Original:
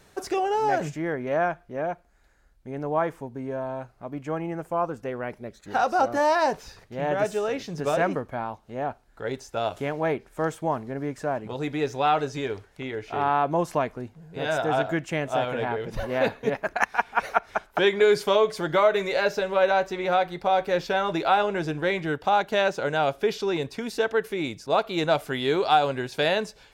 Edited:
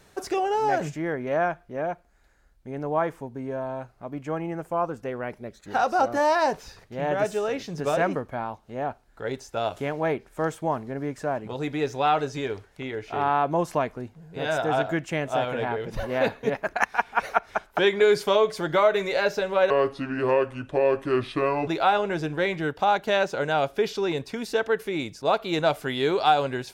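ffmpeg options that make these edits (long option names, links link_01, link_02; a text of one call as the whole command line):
ffmpeg -i in.wav -filter_complex "[0:a]asplit=3[link_01][link_02][link_03];[link_01]atrim=end=19.704[link_04];[link_02]atrim=start=19.7:end=21.12,asetpts=PTS-STARTPTS,asetrate=31752,aresample=44100[link_05];[link_03]atrim=start=21.116[link_06];[link_04][link_05]acrossfade=duration=0.004:curve1=hsin:curve2=hsin[link_07];[link_07][link_06]acrossfade=duration=0.004:curve1=hsin:curve2=hsin" out.wav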